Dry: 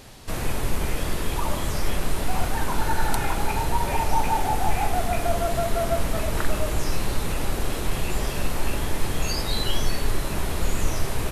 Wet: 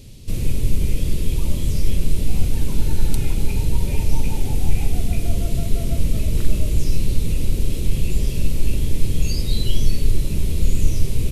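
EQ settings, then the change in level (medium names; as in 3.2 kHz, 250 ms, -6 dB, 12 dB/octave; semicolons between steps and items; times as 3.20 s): tone controls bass +11 dB, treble +2 dB; high-order bell 1.1 kHz -14.5 dB; -3.0 dB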